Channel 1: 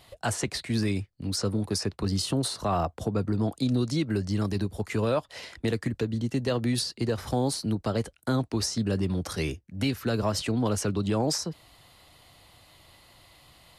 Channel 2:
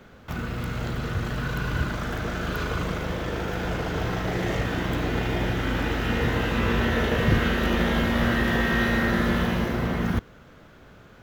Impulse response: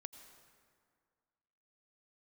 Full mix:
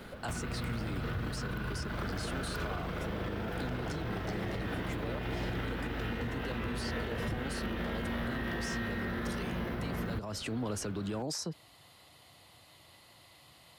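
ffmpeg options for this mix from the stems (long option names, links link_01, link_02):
-filter_complex "[0:a]highpass=89,alimiter=limit=-24dB:level=0:latency=1:release=35,volume=-2.5dB[link_01];[1:a]equalizer=frequency=6700:width=2.4:gain=-10.5,acompressor=threshold=-29dB:ratio=2.5,asoftclip=type=tanh:threshold=-21.5dB,volume=2dB[link_02];[link_01][link_02]amix=inputs=2:normalize=0,alimiter=level_in=3.5dB:limit=-24dB:level=0:latency=1:release=395,volume=-3.5dB"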